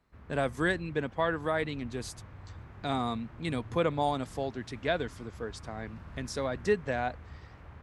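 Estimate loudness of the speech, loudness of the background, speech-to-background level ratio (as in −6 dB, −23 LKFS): −33.0 LKFS, −49.0 LKFS, 16.0 dB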